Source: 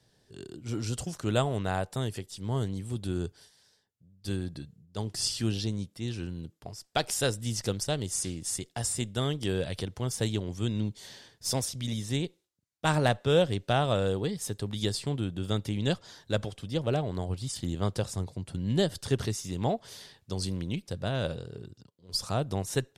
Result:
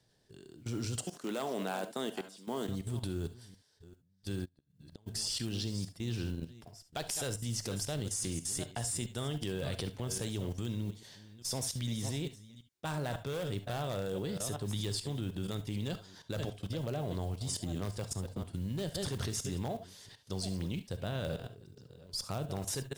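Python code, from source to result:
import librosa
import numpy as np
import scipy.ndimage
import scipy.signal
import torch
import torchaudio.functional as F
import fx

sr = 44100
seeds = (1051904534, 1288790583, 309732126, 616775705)

p1 = fx.reverse_delay(x, sr, ms=394, wet_db=-14.0)
p2 = (np.mod(10.0 ** (17.5 / 20.0) * p1 + 1.0, 2.0) - 1.0) / 10.0 ** (17.5 / 20.0)
p3 = p1 + F.gain(torch.from_numpy(p2), -9.5).numpy()
p4 = fx.mod_noise(p3, sr, seeds[0], snr_db=28)
p5 = fx.steep_highpass(p4, sr, hz=200.0, slope=36, at=(0.98, 2.69))
p6 = fx.level_steps(p5, sr, step_db=18)
p7 = fx.rev_gated(p6, sr, seeds[1], gate_ms=90, shape='rising', drr_db=11.5)
y = fx.gate_flip(p7, sr, shuts_db=-34.0, range_db=-29, at=(4.44, 5.06), fade=0.02)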